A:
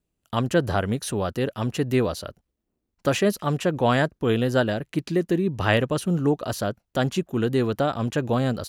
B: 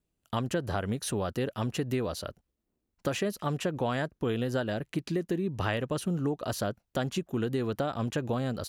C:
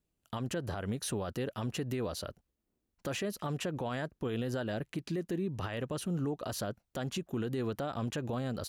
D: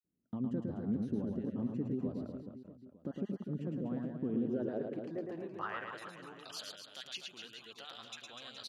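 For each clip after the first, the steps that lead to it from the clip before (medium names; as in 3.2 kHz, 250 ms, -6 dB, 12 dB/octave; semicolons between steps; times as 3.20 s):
compression, threshold -24 dBFS, peak gain reduction 9 dB; trim -2.5 dB
peak limiter -25.5 dBFS, peak gain reduction 11 dB; trim -1.5 dB
random holes in the spectrogram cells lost 21%; band-pass sweep 230 Hz -> 3.5 kHz, 4.25–6.54 s; reverse bouncing-ball echo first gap 110 ms, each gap 1.25×, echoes 5; trim +4.5 dB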